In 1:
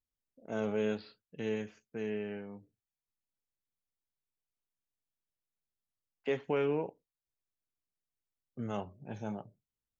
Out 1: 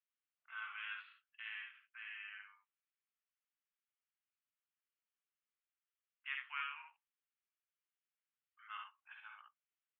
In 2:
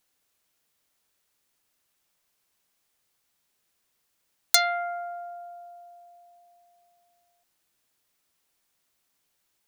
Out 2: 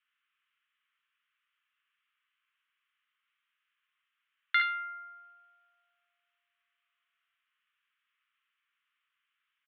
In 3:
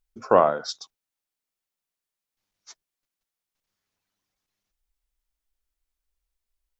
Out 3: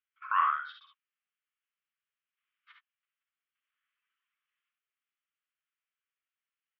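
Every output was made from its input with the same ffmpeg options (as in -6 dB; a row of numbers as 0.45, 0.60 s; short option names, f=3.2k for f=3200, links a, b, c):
-af "asuperpass=centerf=1900:order=12:qfactor=0.9,aecho=1:1:54|69:0.447|0.501"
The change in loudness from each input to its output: -10.0, -5.0, -8.0 LU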